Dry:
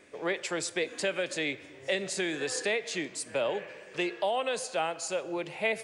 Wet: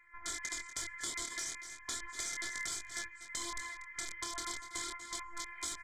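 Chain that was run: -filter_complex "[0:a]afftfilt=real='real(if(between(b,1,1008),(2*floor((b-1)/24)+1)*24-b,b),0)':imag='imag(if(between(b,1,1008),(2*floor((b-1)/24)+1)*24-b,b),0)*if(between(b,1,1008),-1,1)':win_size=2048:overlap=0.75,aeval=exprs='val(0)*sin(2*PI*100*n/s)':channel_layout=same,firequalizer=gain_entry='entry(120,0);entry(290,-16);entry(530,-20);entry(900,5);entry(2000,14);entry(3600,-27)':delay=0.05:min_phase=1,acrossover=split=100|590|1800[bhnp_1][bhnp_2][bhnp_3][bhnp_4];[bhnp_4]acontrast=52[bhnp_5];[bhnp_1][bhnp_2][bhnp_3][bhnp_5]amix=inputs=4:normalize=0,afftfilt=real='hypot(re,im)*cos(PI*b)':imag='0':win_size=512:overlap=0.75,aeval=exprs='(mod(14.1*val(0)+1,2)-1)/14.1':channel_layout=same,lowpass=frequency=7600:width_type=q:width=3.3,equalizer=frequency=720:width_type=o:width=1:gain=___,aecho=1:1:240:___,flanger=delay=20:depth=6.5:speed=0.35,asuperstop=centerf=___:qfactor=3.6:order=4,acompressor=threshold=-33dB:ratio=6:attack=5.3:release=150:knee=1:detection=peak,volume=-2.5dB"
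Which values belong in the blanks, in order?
-6, 0.15, 2700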